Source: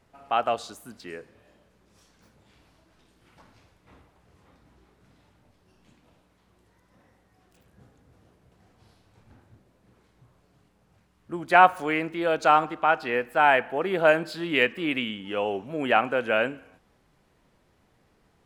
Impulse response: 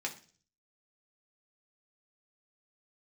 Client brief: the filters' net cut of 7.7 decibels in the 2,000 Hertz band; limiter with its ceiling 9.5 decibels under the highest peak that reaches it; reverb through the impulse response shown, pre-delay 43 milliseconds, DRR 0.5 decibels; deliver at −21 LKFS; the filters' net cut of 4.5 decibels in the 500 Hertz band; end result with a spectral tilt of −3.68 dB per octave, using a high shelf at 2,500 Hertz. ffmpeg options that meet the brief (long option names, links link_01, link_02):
-filter_complex "[0:a]equalizer=frequency=500:width_type=o:gain=-5,equalizer=frequency=2000:width_type=o:gain=-8.5,highshelf=frequency=2500:gain=-5,alimiter=limit=-17dB:level=0:latency=1,asplit=2[link_01][link_02];[1:a]atrim=start_sample=2205,adelay=43[link_03];[link_02][link_03]afir=irnorm=-1:irlink=0,volume=-3dB[link_04];[link_01][link_04]amix=inputs=2:normalize=0,volume=8.5dB"